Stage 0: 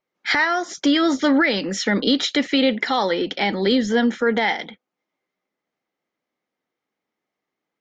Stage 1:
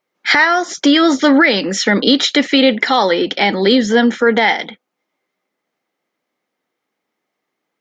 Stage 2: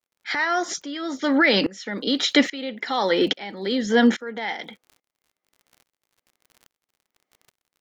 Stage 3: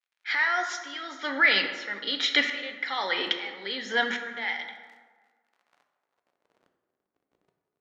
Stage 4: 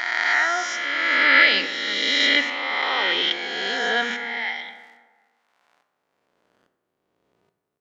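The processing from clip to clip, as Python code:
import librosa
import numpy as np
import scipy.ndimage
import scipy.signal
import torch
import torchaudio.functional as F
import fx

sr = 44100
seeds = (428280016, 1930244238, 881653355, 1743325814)

y1 = fx.low_shelf(x, sr, hz=110.0, db=-10.0)
y1 = y1 * librosa.db_to_amplitude(7.5)
y2 = fx.dmg_crackle(y1, sr, seeds[0], per_s=57.0, level_db=-34.0)
y2 = fx.tremolo_decay(y2, sr, direction='swelling', hz=1.2, depth_db=24)
y3 = fx.filter_sweep_bandpass(y2, sr, from_hz=2200.0, to_hz=300.0, start_s=4.85, end_s=7.06, q=1.0)
y3 = fx.rev_plate(y3, sr, seeds[1], rt60_s=1.5, hf_ratio=0.5, predelay_ms=0, drr_db=5.0)
y4 = fx.spec_swells(y3, sr, rise_s=2.32)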